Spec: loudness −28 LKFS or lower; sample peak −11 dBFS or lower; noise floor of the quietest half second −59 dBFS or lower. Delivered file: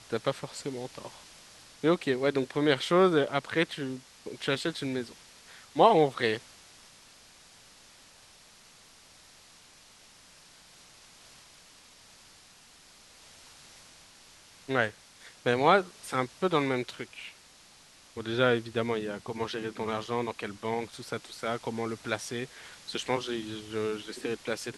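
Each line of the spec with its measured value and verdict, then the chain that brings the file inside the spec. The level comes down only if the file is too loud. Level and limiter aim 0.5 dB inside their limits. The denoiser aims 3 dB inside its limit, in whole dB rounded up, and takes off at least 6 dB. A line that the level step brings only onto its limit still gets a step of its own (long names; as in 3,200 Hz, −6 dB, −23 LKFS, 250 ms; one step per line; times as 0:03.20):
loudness −30.0 LKFS: in spec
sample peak −7.0 dBFS: out of spec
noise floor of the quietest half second −56 dBFS: out of spec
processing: broadband denoise 6 dB, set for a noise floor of −56 dBFS
brickwall limiter −11.5 dBFS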